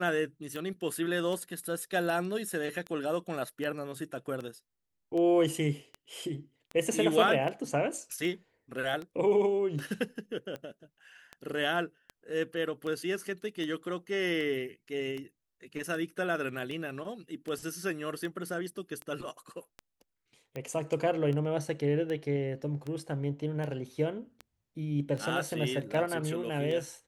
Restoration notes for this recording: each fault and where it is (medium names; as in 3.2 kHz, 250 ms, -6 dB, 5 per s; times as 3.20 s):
tick 78 rpm